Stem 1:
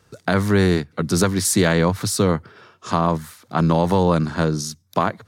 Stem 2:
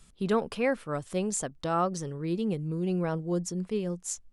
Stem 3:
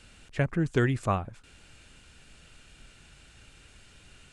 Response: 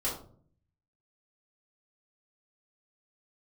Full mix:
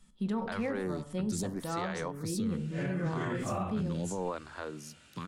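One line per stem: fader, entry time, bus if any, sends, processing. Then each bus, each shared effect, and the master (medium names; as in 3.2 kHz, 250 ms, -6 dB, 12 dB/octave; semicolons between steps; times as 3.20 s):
-13.5 dB, 0.20 s, no send, treble shelf 12 kHz -4 dB; lamp-driven phase shifter 0.76 Hz
-10.0 dB, 0.00 s, send -11 dB, small resonant body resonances 210/910/1800/3300 Hz, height 10 dB
-4.5 dB, 2.45 s, send -11.5 dB, phase randomisation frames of 200 ms; high-pass 86 Hz 24 dB/octave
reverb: on, RT60 0.50 s, pre-delay 3 ms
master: peak limiter -25 dBFS, peak gain reduction 9 dB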